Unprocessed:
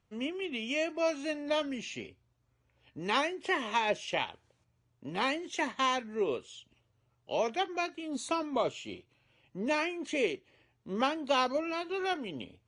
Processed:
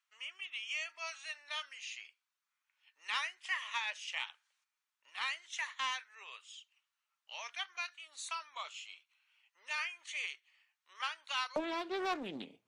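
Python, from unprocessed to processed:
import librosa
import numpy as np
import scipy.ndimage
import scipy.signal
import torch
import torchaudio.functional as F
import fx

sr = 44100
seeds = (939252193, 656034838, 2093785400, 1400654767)

y = fx.highpass(x, sr, hz=fx.steps((0.0, 1200.0), (11.56, 180.0)), slope=24)
y = 10.0 ** (-19.0 / 20.0) * np.tanh(y / 10.0 ** (-19.0 / 20.0))
y = fx.doppler_dist(y, sr, depth_ms=0.4)
y = y * 10.0 ** (-2.5 / 20.0)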